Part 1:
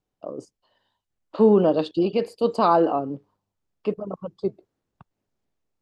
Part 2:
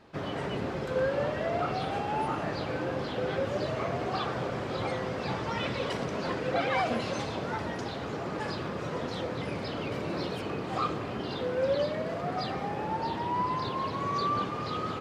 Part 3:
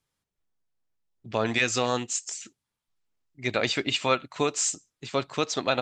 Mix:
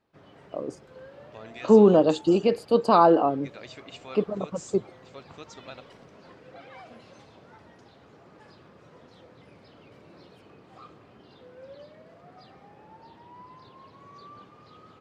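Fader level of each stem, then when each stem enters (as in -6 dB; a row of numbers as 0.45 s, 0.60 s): +1.0 dB, -18.5 dB, -18.5 dB; 0.30 s, 0.00 s, 0.00 s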